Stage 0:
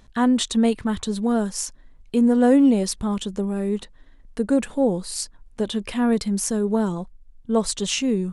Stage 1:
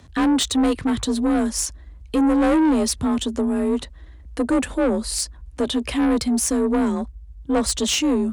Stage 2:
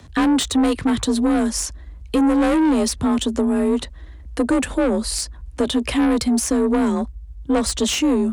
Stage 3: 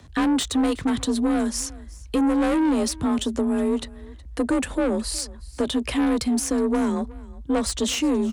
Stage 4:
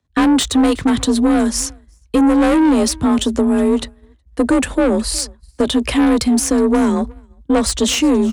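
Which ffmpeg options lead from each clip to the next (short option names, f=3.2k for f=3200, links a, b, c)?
-af "afreqshift=37,asoftclip=type=tanh:threshold=-20dB,volume=5.5dB"
-filter_complex "[0:a]acrossover=split=210|2300|7000[a][b][c][d];[a]acompressor=threshold=-30dB:ratio=4[e];[b]acompressor=threshold=-20dB:ratio=4[f];[c]acompressor=threshold=-31dB:ratio=4[g];[d]acompressor=threshold=-32dB:ratio=4[h];[e][f][g][h]amix=inputs=4:normalize=0,volume=4dB"
-af "aecho=1:1:368:0.0841,volume=-4dB"
-af "agate=range=-33dB:threshold=-28dB:ratio=3:detection=peak,volume=8dB"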